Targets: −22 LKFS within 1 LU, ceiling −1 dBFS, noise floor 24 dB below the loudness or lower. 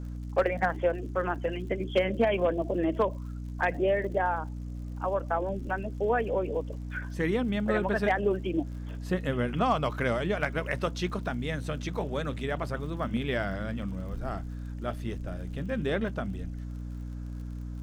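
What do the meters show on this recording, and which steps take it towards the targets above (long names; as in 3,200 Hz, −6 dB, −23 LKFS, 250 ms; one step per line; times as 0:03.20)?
crackle rate 45 per second; mains hum 60 Hz; hum harmonics up to 300 Hz; level of the hum −34 dBFS; integrated loudness −30.5 LKFS; sample peak −14.5 dBFS; target loudness −22.0 LKFS
→ click removal
mains-hum notches 60/120/180/240/300 Hz
level +8.5 dB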